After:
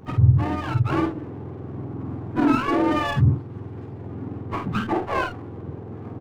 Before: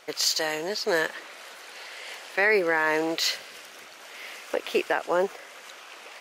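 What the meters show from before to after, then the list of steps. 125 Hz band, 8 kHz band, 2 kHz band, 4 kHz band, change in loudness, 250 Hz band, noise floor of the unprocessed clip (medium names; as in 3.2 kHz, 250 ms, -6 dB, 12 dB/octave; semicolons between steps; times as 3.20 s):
+30.5 dB, under -15 dB, -6.0 dB, -10.5 dB, +2.0 dB, +12.0 dB, -47 dBFS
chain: spectrum inverted on a logarithmic axis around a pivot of 750 Hz; in parallel at 0 dB: compression, threshold -33 dBFS, peak gain reduction 20.5 dB; on the sum: doubling 49 ms -5 dB; sliding maximum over 9 samples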